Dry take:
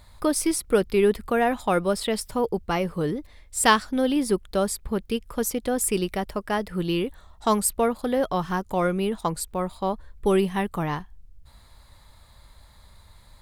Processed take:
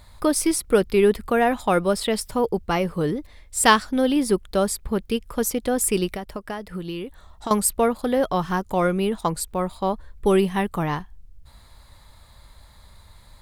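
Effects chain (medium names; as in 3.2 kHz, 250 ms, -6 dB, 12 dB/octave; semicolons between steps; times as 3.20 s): 6.08–7.51 s: compression 6:1, threshold -31 dBFS, peak gain reduction 13 dB; trim +2.5 dB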